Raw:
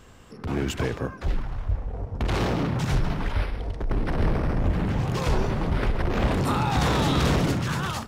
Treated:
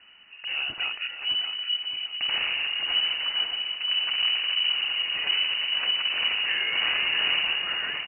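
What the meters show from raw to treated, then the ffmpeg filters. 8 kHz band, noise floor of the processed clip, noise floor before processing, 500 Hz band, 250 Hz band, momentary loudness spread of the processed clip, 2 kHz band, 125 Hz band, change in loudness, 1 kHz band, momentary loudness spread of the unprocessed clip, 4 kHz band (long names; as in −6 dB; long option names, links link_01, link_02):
below −40 dB, −45 dBFS, −43 dBFS, −18.0 dB, below −25 dB, 6 LU, +7.0 dB, below −30 dB, +2.0 dB, −10.5 dB, 9 LU, +15.5 dB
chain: -filter_complex "[0:a]lowpass=frequency=2600:width_type=q:width=0.5098,lowpass=frequency=2600:width_type=q:width=0.6013,lowpass=frequency=2600:width_type=q:width=0.9,lowpass=frequency=2600:width_type=q:width=2.563,afreqshift=-3000,asplit=2[link_01][link_02];[link_02]adelay=617,lowpass=frequency=2100:poles=1,volume=-6dB,asplit=2[link_03][link_04];[link_04]adelay=617,lowpass=frequency=2100:poles=1,volume=0.41,asplit=2[link_05][link_06];[link_06]adelay=617,lowpass=frequency=2100:poles=1,volume=0.41,asplit=2[link_07][link_08];[link_08]adelay=617,lowpass=frequency=2100:poles=1,volume=0.41,asplit=2[link_09][link_10];[link_10]adelay=617,lowpass=frequency=2100:poles=1,volume=0.41[link_11];[link_01][link_03][link_05][link_07][link_09][link_11]amix=inputs=6:normalize=0,volume=-3.5dB"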